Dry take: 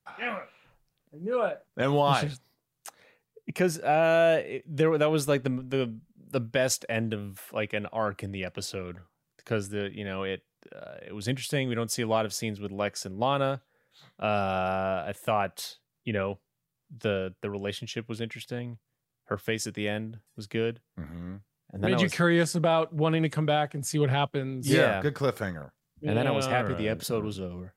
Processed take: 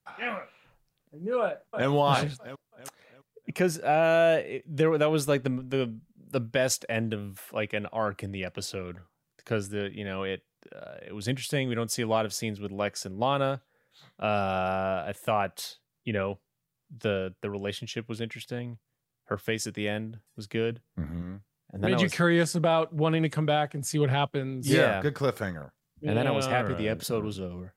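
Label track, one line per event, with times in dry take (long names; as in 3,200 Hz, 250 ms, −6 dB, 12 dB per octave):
1.400000	1.890000	delay throw 330 ms, feedback 40%, level −7.5 dB
20.710000	21.220000	low-shelf EQ 440 Hz +6.5 dB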